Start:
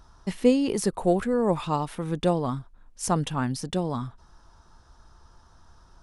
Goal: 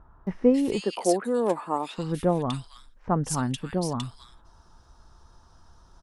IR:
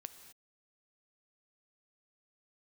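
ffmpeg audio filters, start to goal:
-filter_complex "[0:a]asettb=1/sr,asplit=3[link_01][link_02][link_03];[link_01]atrim=end=0.814[link_04];[link_02]atrim=start=0.81:end=1.98,asetpts=PTS-STARTPTS,afade=type=in:duration=0.004:curve=qsin,afade=type=out:start_time=1.166:duration=0.004:curve=qsin,highpass=frequency=240:width=0.5412,highpass=frequency=240:width=1.3066[link_05];[link_03]atrim=start=1.976[link_06];[link_04][link_05]acrossfade=duration=0.004:curve1=hsin:curve2=qsin[link_07];[link_07][link_06]acrossfade=duration=0.004:curve1=qsin:curve2=hsin,acrossover=split=1900[link_08][link_09];[link_09]adelay=270[link_10];[link_08][link_10]amix=inputs=2:normalize=0"

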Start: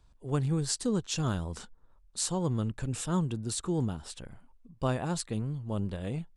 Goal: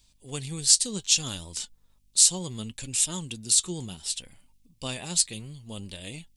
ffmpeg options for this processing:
ffmpeg -i in.wav -af "flanger=delay=3.2:depth=2.4:regen=66:speed=0.66:shape=sinusoidal,aeval=exprs='val(0)+0.000398*(sin(2*PI*50*n/s)+sin(2*PI*2*50*n/s)/2+sin(2*PI*3*50*n/s)/3+sin(2*PI*4*50*n/s)/4+sin(2*PI*5*50*n/s)/5)':channel_layout=same,aexciter=amount=7.9:drive=4.9:freq=2100,volume=-2dB" out.wav

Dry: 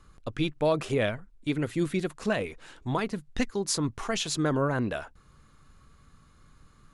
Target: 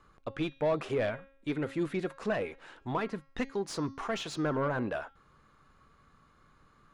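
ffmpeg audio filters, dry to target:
ffmpeg -i in.wav -filter_complex "[0:a]bandreject=frequency=272.3:width_type=h:width=4,bandreject=frequency=544.6:width_type=h:width=4,bandreject=frequency=816.9:width_type=h:width=4,bandreject=frequency=1089.2:width_type=h:width=4,bandreject=frequency=1361.5:width_type=h:width=4,bandreject=frequency=1633.8:width_type=h:width=4,bandreject=frequency=1906.1:width_type=h:width=4,bandreject=frequency=2178.4:width_type=h:width=4,bandreject=frequency=2450.7:width_type=h:width=4,bandreject=frequency=2723:width_type=h:width=4,bandreject=frequency=2995.3:width_type=h:width=4,bandreject=frequency=3267.6:width_type=h:width=4,bandreject=frequency=3539.9:width_type=h:width=4,bandreject=frequency=3812.2:width_type=h:width=4,bandreject=frequency=4084.5:width_type=h:width=4,bandreject=frequency=4356.8:width_type=h:width=4,bandreject=frequency=4629.1:width_type=h:width=4,bandreject=frequency=4901.4:width_type=h:width=4,bandreject=frequency=5173.7:width_type=h:width=4,bandreject=frequency=5446:width_type=h:width=4,bandreject=frequency=5718.3:width_type=h:width=4,bandreject=frequency=5990.6:width_type=h:width=4,bandreject=frequency=6262.9:width_type=h:width=4,bandreject=frequency=6535.2:width_type=h:width=4,asplit=2[link_01][link_02];[link_02]highpass=frequency=720:poles=1,volume=15dB,asoftclip=type=tanh:threshold=-14dB[link_03];[link_01][link_03]amix=inputs=2:normalize=0,lowpass=frequency=1100:poles=1,volume=-6dB,volume=-5dB" out.wav

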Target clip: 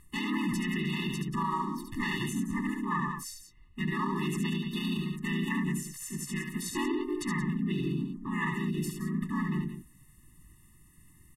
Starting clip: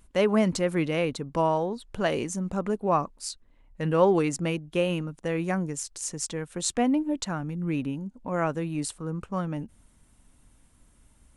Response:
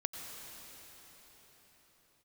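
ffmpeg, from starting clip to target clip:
-filter_complex "[0:a]acrossover=split=5200[link_01][link_02];[link_02]acompressor=threshold=-49dB:ratio=16[link_03];[link_01][link_03]amix=inputs=2:normalize=0,aresample=22050,aresample=44100,equalizer=frequency=125:width_type=o:width=1:gain=10,equalizer=frequency=500:width_type=o:width=1:gain=-11,equalizer=frequency=2000:width_type=o:width=1:gain=5,equalizer=frequency=4000:width_type=o:width=1:gain=-3,equalizer=frequency=8000:width_type=o:width=1:gain=11,aecho=1:1:72.89|177.8:0.562|0.282,asplit=4[link_04][link_05][link_06][link_07];[link_05]asetrate=52444,aresample=44100,atempo=0.840896,volume=0dB[link_08];[link_06]asetrate=58866,aresample=44100,atempo=0.749154,volume=-3dB[link_09];[link_07]asetrate=66075,aresample=44100,atempo=0.66742,volume=-3dB[link_10];[link_04][link_08][link_09][link_10]amix=inputs=4:normalize=0,alimiter=limit=-15dB:level=0:latency=1:release=27,equalizer=frequency=1600:width=1.3:gain=8.5,afftfilt=real='re*eq(mod(floor(b*sr/1024/430),2),0)':imag='im*eq(mod(floor(b*sr/1024/430),2),0)':win_size=1024:overlap=0.75,volume=-8dB"

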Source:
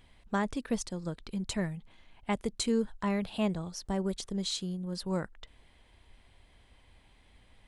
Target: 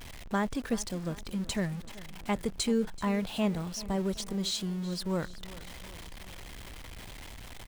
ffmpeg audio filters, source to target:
ffmpeg -i in.wav -af "aeval=exprs='val(0)+0.5*0.01*sgn(val(0))':channel_layout=same,aecho=1:1:382|764|1146|1528|1910:0.126|0.0705|0.0395|0.0221|0.0124" out.wav

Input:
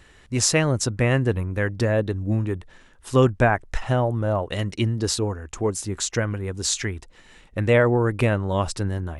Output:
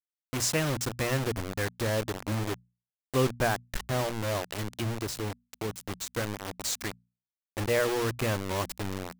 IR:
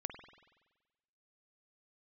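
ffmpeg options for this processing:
-filter_complex "[0:a]acrusher=bits=3:mix=0:aa=0.000001,bandreject=frequency=60:width_type=h:width=6,bandreject=frequency=120:width_type=h:width=6,bandreject=frequency=180:width_type=h:width=6,bandreject=frequency=240:width_type=h:width=6,asettb=1/sr,asplit=3[link_01][link_02][link_03];[link_01]atrim=end=4.534[link_04];[link_02]atrim=start=4.53:end=6.07,asetpts=PTS-STARTPTS,afade=type=in:duration=0.004:curve=qsin,afade=type=out:start_time=1.536:duration=0.004:curve=qsin,acrossover=split=260[link_05][link_06];[link_06]acompressor=threshold=-24dB:ratio=4[link_07];[link_05][link_07]amix=inputs=2:normalize=0[link_08];[link_03]atrim=start=6.066[link_09];[link_04][link_08]acrossfade=duration=0.004:curve1=hsin:curve2=qsin[link_10];[link_10][link_09]acrossfade=duration=0.004:curve1=qsin:curve2=hsin,volume=-8.5dB"

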